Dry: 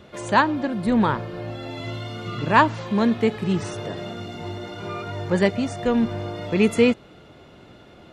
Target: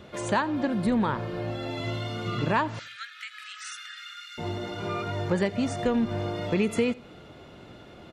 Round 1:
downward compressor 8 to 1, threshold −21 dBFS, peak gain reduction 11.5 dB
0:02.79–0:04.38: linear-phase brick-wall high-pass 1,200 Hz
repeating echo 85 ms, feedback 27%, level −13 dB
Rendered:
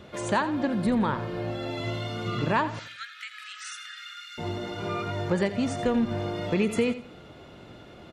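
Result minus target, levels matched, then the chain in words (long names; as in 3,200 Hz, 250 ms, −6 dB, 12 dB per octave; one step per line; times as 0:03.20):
echo-to-direct +8.5 dB
downward compressor 8 to 1, threshold −21 dBFS, peak gain reduction 11.5 dB
0:02.79–0:04.38: linear-phase brick-wall high-pass 1,200 Hz
repeating echo 85 ms, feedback 27%, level −21.5 dB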